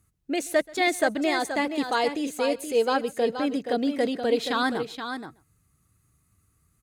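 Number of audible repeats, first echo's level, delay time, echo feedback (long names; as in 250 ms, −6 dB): 3, −23.5 dB, 131 ms, repeats not evenly spaced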